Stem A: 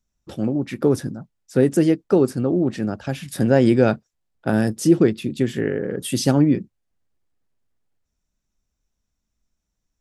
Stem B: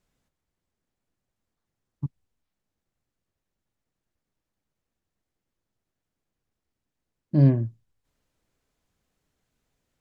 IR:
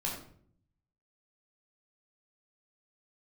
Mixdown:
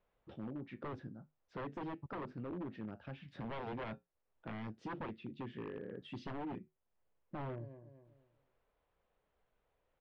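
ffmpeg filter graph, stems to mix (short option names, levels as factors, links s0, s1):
-filter_complex "[0:a]flanger=delay=8.2:depth=2.3:regen=-71:speed=0.26:shape=triangular,volume=0.422[s0];[1:a]equalizer=f=125:t=o:w=1:g=-5,equalizer=f=250:t=o:w=1:g=-8,equalizer=f=500:t=o:w=1:g=9,equalizer=f=1000:t=o:w=1:g=6,alimiter=limit=0.224:level=0:latency=1:release=143,volume=0.531,asplit=2[s1][s2];[s2]volume=0.133,aecho=0:1:243|486|729|972:1|0.24|0.0576|0.0138[s3];[s0][s1][s3]amix=inputs=3:normalize=0,aeval=exprs='0.0422*(abs(mod(val(0)/0.0422+3,4)-2)-1)':c=same,lowpass=f=3300:w=0.5412,lowpass=f=3300:w=1.3066,acompressor=threshold=0.00126:ratio=1.5"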